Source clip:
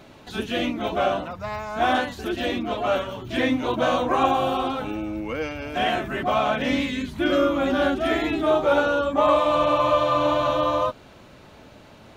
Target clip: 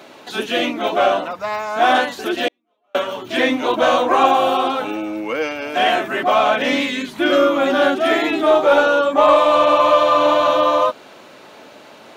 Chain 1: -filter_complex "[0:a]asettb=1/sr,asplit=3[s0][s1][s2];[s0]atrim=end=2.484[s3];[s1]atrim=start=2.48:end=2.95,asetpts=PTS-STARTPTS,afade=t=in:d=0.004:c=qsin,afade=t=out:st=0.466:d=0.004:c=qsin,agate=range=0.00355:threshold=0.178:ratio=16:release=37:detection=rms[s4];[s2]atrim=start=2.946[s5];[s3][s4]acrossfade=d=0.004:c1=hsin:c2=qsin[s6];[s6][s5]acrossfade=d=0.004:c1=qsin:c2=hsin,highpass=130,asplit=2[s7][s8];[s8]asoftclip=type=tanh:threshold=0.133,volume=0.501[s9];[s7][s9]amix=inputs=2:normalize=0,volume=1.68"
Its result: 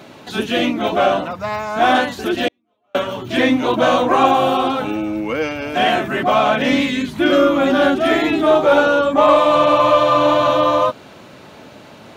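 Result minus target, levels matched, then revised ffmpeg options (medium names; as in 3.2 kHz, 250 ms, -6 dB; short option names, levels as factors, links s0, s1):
125 Hz band +10.5 dB
-filter_complex "[0:a]asettb=1/sr,asplit=3[s0][s1][s2];[s0]atrim=end=2.484[s3];[s1]atrim=start=2.48:end=2.95,asetpts=PTS-STARTPTS,afade=t=in:d=0.004:c=qsin,afade=t=out:st=0.466:d=0.004:c=qsin,agate=range=0.00355:threshold=0.178:ratio=16:release=37:detection=rms[s4];[s2]atrim=start=2.946[s5];[s3][s4]acrossfade=d=0.004:c1=hsin:c2=qsin[s6];[s6][s5]acrossfade=d=0.004:c1=qsin:c2=hsin,highpass=330,asplit=2[s7][s8];[s8]asoftclip=type=tanh:threshold=0.133,volume=0.501[s9];[s7][s9]amix=inputs=2:normalize=0,volume=1.68"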